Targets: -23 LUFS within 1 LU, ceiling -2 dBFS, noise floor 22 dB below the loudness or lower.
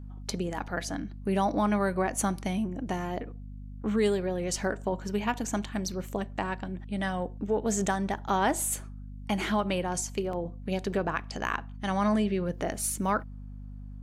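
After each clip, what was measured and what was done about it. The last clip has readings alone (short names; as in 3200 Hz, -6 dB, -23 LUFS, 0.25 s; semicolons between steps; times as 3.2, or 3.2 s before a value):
dropouts 1; longest dropout 2.4 ms; hum 50 Hz; harmonics up to 250 Hz; hum level -39 dBFS; loudness -30.5 LUFS; peak -13.5 dBFS; loudness target -23.0 LUFS
-> interpolate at 10.33, 2.4 ms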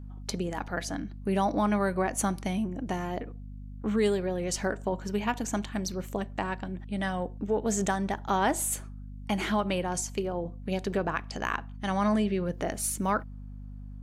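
dropouts 0; hum 50 Hz; harmonics up to 250 Hz; hum level -39 dBFS
-> de-hum 50 Hz, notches 5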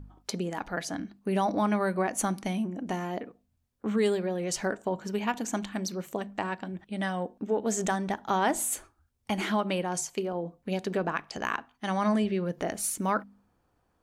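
hum none; loudness -30.5 LUFS; peak -13.0 dBFS; loudness target -23.0 LUFS
-> gain +7.5 dB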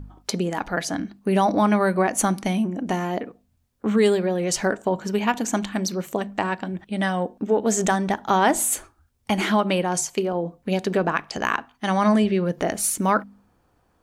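loudness -23.0 LUFS; peak -5.5 dBFS; noise floor -66 dBFS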